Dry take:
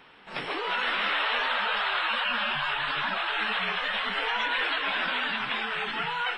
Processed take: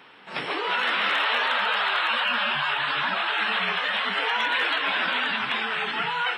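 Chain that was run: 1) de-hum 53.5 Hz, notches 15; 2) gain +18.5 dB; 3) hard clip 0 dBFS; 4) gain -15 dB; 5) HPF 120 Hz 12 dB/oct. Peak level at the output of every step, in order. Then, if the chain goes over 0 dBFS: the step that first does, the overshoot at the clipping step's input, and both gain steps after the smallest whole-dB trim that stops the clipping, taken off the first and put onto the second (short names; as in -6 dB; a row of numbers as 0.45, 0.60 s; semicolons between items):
-14.5, +4.0, 0.0, -15.0, -14.0 dBFS; step 2, 4.0 dB; step 2 +14.5 dB, step 4 -11 dB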